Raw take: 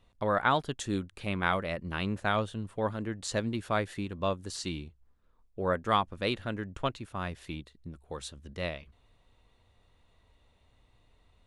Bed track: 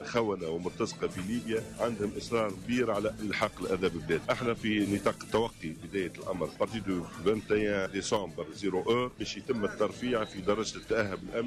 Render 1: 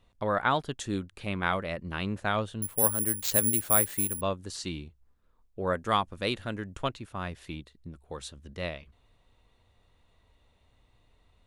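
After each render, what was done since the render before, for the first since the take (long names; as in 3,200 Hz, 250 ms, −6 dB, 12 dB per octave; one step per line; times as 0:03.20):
0:02.62–0:04.21: bad sample-rate conversion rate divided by 4×, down none, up zero stuff
0:05.67–0:06.89: parametric band 9,200 Hz +6.5 dB 1.6 octaves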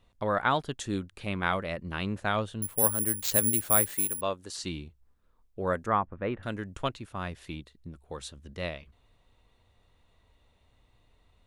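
0:03.96–0:04.57: bass and treble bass −9 dB, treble +1 dB
0:05.86–0:06.43: low-pass filter 1,900 Hz 24 dB per octave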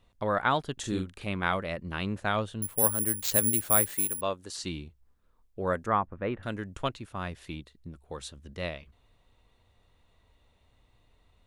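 0:00.73–0:01.24: double-tracking delay 43 ms −4.5 dB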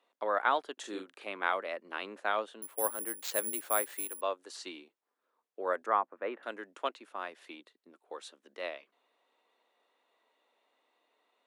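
Bessel high-pass filter 500 Hz, order 8
high-shelf EQ 3,300 Hz −10 dB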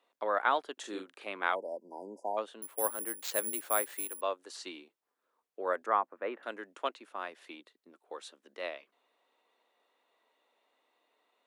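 0:01.55–0:02.38: time-frequency box erased 1,000–4,700 Hz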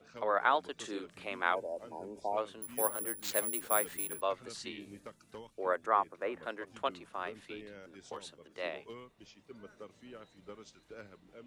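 mix in bed track −20.5 dB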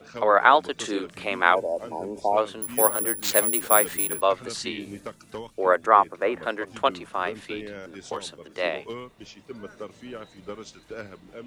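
level +12 dB
brickwall limiter −1 dBFS, peak gain reduction 0.5 dB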